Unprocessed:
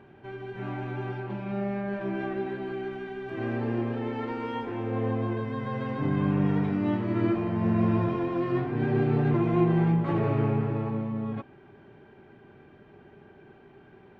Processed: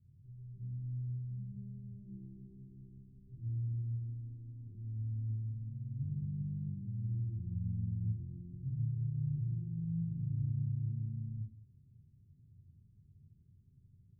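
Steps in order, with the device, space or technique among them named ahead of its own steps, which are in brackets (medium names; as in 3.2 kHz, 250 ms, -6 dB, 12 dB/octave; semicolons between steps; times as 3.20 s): club heard from the street (peak limiter -21.5 dBFS, peak gain reduction 9.5 dB; low-pass 130 Hz 24 dB/octave; reverberation RT60 0.60 s, pre-delay 21 ms, DRR -3 dB); trim -5 dB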